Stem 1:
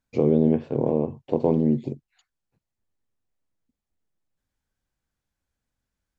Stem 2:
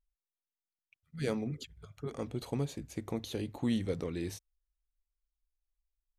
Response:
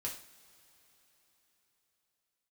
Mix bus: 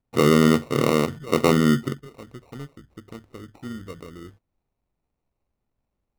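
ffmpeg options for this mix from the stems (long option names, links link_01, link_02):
-filter_complex "[0:a]volume=3dB[link_01];[1:a]lowpass=1100,tremolo=f=140:d=0.462,volume=-1.5dB[link_02];[link_01][link_02]amix=inputs=2:normalize=0,acrusher=samples=27:mix=1:aa=0.000001,highshelf=frequency=3800:gain=-5.5"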